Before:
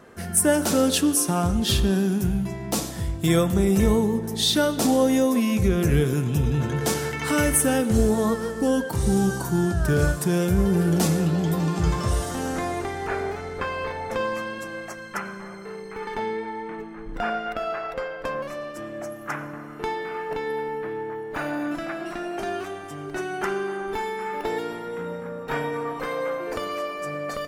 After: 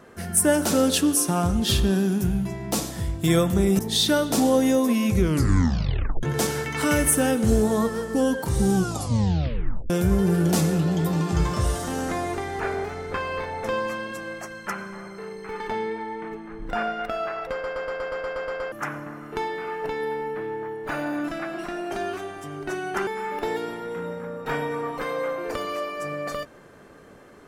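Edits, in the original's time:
3.79–4.26 s: delete
5.67 s: tape stop 1.03 s
9.22 s: tape stop 1.15 s
17.99 s: stutter in place 0.12 s, 10 plays
23.54–24.09 s: delete

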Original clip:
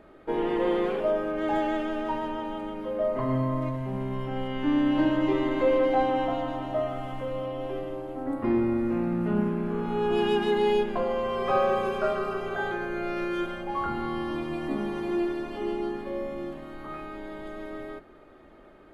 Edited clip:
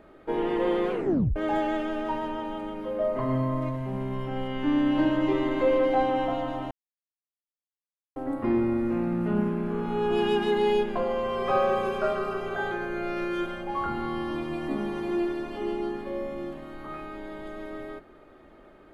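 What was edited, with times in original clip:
0.92 s: tape stop 0.44 s
6.71–8.16 s: mute

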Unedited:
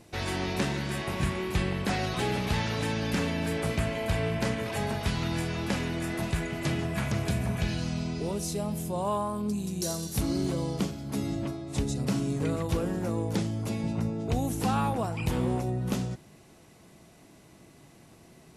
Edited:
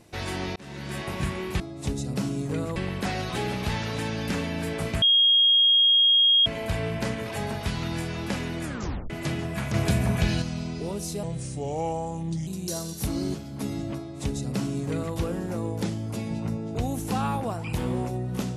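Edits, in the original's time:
0.56–0.98 s: fade in
3.86 s: add tone 3.26 kHz -15.5 dBFS 1.44 s
6.04 s: tape stop 0.46 s
7.14–7.82 s: gain +5.5 dB
8.63–9.61 s: speed 79%
10.48–10.87 s: delete
11.51–12.67 s: copy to 1.60 s

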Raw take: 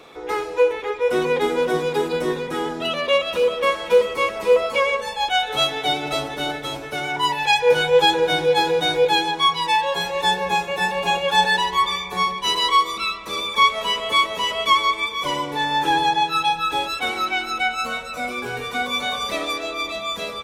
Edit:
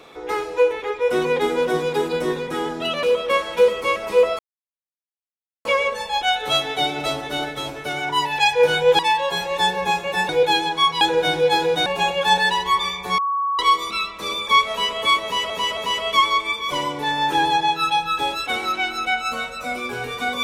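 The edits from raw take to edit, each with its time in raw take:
3.03–3.36 s: delete
4.72 s: insert silence 1.26 s
8.06–8.91 s: swap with 9.63–10.93 s
12.25–12.66 s: bleep 1.12 kHz -19 dBFS
14.30–14.57 s: loop, 3 plays

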